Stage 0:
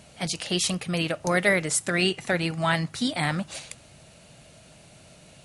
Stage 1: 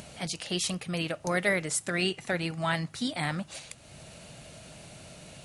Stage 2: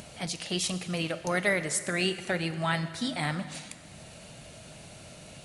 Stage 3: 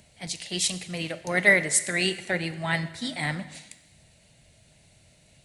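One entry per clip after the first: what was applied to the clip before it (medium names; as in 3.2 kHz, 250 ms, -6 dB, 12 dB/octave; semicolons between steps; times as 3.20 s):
upward compressor, threshold -33 dBFS; trim -5 dB
plate-style reverb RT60 2 s, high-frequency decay 0.9×, DRR 10.5 dB
graphic EQ with 31 bands 1.25 kHz -7 dB, 2 kHz +7 dB, 4 kHz +3 dB, 8 kHz +4 dB; crackle 400 per s -59 dBFS; three bands expanded up and down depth 70%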